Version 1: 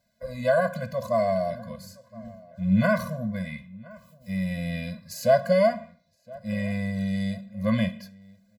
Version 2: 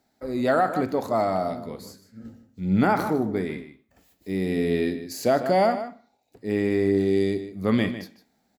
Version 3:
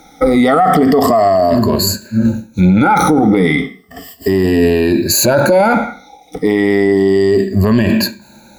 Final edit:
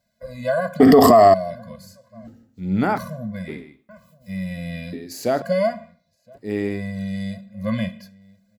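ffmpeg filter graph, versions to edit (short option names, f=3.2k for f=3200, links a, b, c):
-filter_complex "[1:a]asplit=4[a][b][c][d];[0:a]asplit=6[e][f][g][h][i][j];[e]atrim=end=0.802[k];[2:a]atrim=start=0.798:end=1.342[l];[f]atrim=start=1.338:end=2.272[m];[a]atrim=start=2.268:end=2.982[n];[g]atrim=start=2.978:end=3.482[o];[b]atrim=start=3.478:end=3.892[p];[h]atrim=start=3.888:end=4.932[q];[c]atrim=start=4.928:end=5.422[r];[i]atrim=start=5.418:end=6.41[s];[d]atrim=start=6.25:end=6.82[t];[j]atrim=start=6.66[u];[k][l]acrossfade=d=0.004:c1=hsin:c2=hsin[v];[v][m]acrossfade=d=0.004:c1=hsin:c2=hsin[w];[w][n]acrossfade=d=0.004:c1=hsin:c2=hsin[x];[x][o]acrossfade=d=0.004:c1=hsin:c2=hsin[y];[y][p]acrossfade=d=0.004:c1=hsin:c2=hsin[z];[z][q]acrossfade=d=0.004:c1=hsin:c2=hsin[aa];[aa][r]acrossfade=d=0.004:c1=hsin:c2=hsin[ab];[ab][s]acrossfade=d=0.004:c1=hsin:c2=hsin[ac];[ac][t]acrossfade=d=0.16:c1=tri:c2=tri[ad];[ad][u]acrossfade=d=0.16:c1=tri:c2=tri"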